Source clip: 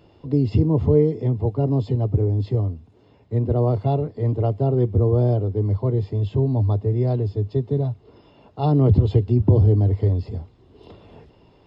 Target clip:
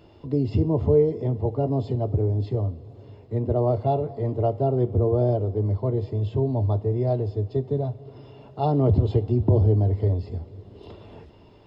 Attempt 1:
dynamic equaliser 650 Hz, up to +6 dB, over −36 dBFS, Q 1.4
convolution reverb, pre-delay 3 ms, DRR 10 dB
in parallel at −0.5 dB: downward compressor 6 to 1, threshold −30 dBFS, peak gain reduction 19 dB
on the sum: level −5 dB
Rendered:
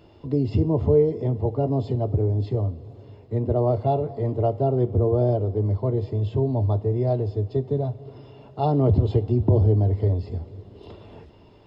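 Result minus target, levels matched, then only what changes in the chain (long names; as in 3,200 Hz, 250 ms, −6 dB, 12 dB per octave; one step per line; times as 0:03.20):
downward compressor: peak gain reduction −6.5 dB
change: downward compressor 6 to 1, threshold −37.5 dBFS, peak gain reduction 25 dB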